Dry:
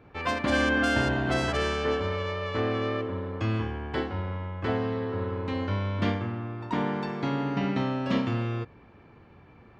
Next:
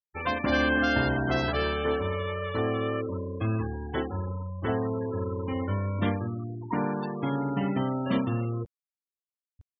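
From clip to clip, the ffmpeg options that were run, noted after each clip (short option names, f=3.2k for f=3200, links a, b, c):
-af "afftfilt=real='re*gte(hypot(re,im),0.0316)':imag='im*gte(hypot(re,im),0.0316)':win_size=1024:overlap=0.75,areverse,acompressor=mode=upward:threshold=-39dB:ratio=2.5,areverse"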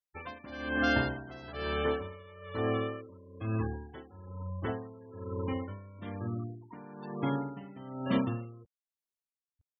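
-af "aeval=exprs='val(0)*pow(10,-19*(0.5-0.5*cos(2*PI*1.1*n/s))/20)':c=same,volume=-1.5dB"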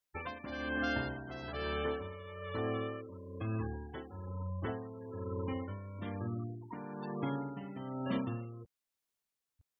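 -af "acompressor=threshold=-47dB:ratio=2,volume=5.5dB"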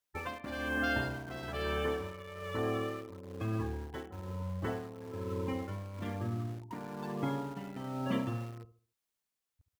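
-filter_complex "[0:a]aecho=1:1:70|140|210|280:0.251|0.0879|0.0308|0.0108,asplit=2[a][b];[b]acrusher=bits=6:mix=0:aa=0.000001,volume=-11dB[c];[a][c]amix=inputs=2:normalize=0"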